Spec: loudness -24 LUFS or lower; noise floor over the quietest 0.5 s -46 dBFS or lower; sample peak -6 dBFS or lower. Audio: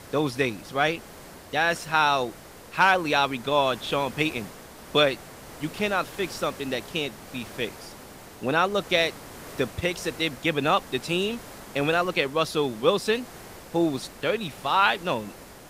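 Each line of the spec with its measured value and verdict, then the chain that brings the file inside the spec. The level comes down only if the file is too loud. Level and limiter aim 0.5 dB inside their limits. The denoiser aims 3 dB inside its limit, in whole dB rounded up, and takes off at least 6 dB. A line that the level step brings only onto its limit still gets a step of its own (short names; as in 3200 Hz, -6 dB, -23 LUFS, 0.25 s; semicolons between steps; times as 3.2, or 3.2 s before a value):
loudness -25.5 LUFS: OK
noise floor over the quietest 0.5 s -45 dBFS: fail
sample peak -7.5 dBFS: OK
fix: denoiser 6 dB, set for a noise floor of -45 dBFS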